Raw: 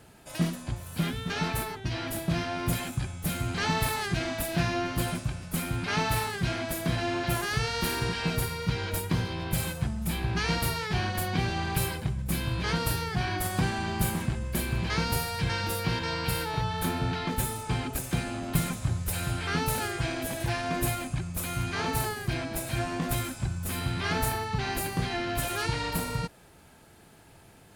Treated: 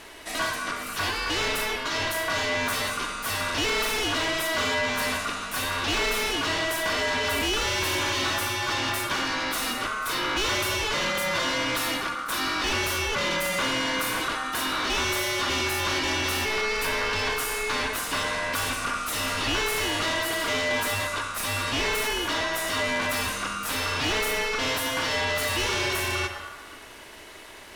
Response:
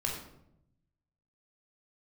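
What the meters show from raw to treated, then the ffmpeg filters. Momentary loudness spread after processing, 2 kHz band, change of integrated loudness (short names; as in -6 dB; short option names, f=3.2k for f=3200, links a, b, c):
4 LU, +8.5 dB, +4.5 dB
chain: -filter_complex "[0:a]asplit=2[a][b];[1:a]atrim=start_sample=2205,asetrate=26019,aresample=44100[c];[b][c]afir=irnorm=-1:irlink=0,volume=-14dB[d];[a][d]amix=inputs=2:normalize=0,asplit=2[e][f];[f]highpass=f=720:p=1,volume=26dB,asoftclip=type=tanh:threshold=-10.5dB[g];[e][g]amix=inputs=2:normalize=0,lowpass=f=5.2k:p=1,volume=-6dB,aeval=exprs='val(0)*sin(2*PI*1300*n/s)':c=same,volume=-4.5dB"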